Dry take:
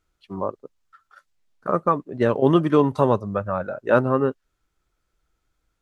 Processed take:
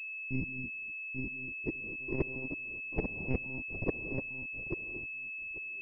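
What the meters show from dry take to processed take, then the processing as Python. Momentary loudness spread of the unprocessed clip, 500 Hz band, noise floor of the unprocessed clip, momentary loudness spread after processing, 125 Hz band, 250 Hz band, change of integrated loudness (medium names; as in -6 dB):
12 LU, -20.5 dB, -76 dBFS, 3 LU, -13.0 dB, -15.5 dB, -15.5 dB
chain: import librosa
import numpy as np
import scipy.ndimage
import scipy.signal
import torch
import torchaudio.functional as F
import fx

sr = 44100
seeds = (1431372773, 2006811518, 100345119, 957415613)

p1 = fx.bit_reversed(x, sr, seeds[0], block=64)
p2 = fx.low_shelf(p1, sr, hz=71.0, db=4.5)
p3 = fx.hum_notches(p2, sr, base_hz=60, count=3)
p4 = fx.level_steps(p3, sr, step_db=13)
p5 = p3 + (p4 * 10.0 ** (-1.0 / 20.0))
p6 = fx.gate_flip(p5, sr, shuts_db=-9.0, range_db=-37)
p7 = np.sign(p6) * np.maximum(np.abs(p6) - 10.0 ** (-36.0 / 20.0), 0.0)
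p8 = p7 + fx.echo_feedback(p7, sr, ms=841, feedback_pct=16, wet_db=-5.5, dry=0)
p9 = fx.rev_gated(p8, sr, seeds[1], gate_ms=270, shape='rising', drr_db=10.0)
p10 = fx.lpc_monotone(p9, sr, seeds[2], pitch_hz=130.0, order=16)
p11 = fx.filter_sweep_lowpass(p10, sr, from_hz=240.0, to_hz=540.0, start_s=0.99, end_s=2.2, q=1.6)
y = fx.pwm(p11, sr, carrier_hz=2600.0)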